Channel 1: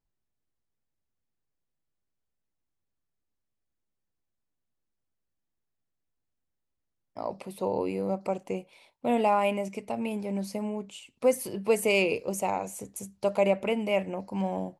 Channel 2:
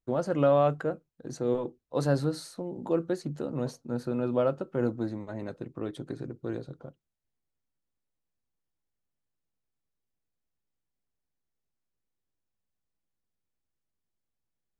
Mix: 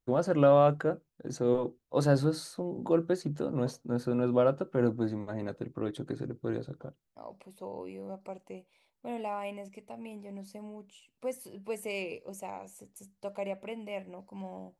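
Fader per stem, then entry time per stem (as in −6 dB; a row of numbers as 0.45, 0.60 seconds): −12.0, +1.0 decibels; 0.00, 0.00 seconds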